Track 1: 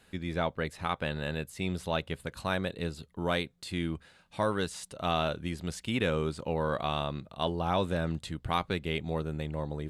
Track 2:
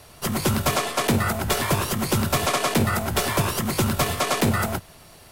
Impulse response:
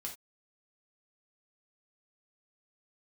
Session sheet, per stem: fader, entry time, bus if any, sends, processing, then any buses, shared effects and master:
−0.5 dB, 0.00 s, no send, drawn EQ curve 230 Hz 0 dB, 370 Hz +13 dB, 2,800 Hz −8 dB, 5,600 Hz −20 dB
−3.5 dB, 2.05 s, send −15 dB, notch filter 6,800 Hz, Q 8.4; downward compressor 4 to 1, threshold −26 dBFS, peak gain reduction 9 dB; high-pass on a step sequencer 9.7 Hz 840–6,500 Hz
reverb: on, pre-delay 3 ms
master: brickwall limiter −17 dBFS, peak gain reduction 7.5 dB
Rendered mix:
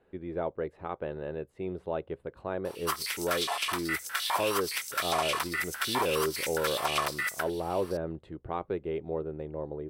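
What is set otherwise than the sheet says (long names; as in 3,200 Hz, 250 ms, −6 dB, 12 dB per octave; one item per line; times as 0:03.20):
stem 1 −0.5 dB → −8.0 dB
stem 2: entry 2.05 s → 2.65 s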